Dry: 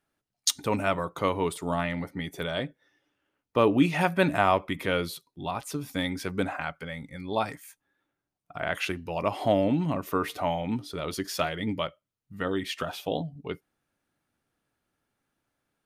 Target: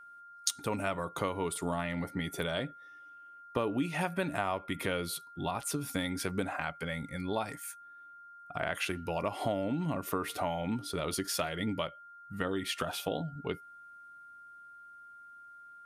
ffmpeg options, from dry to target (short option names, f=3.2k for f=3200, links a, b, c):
-af "equalizer=f=9.7k:t=o:w=0.61:g=7,acompressor=threshold=-32dB:ratio=4,aeval=exprs='val(0)+0.00282*sin(2*PI*1400*n/s)':c=same,volume=1.5dB"